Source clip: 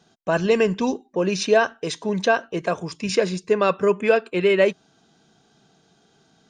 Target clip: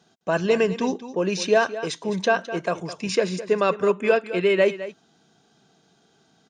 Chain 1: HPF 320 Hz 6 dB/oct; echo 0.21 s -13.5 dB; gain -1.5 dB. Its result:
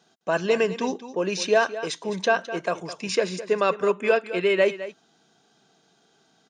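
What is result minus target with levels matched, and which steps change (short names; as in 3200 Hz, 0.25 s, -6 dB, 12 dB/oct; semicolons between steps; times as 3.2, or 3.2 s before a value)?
125 Hz band -4.0 dB
change: HPF 91 Hz 6 dB/oct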